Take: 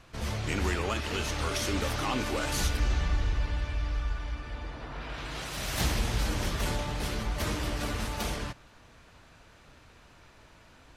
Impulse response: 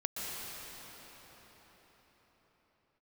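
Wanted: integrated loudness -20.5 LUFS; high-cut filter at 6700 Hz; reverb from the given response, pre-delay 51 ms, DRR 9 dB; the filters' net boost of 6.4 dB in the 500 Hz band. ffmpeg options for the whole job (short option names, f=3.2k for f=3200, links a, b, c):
-filter_complex "[0:a]lowpass=6.7k,equalizer=f=500:t=o:g=8,asplit=2[a][b];[1:a]atrim=start_sample=2205,adelay=51[c];[b][c]afir=irnorm=-1:irlink=0,volume=-13.5dB[d];[a][d]amix=inputs=2:normalize=0,volume=9.5dB"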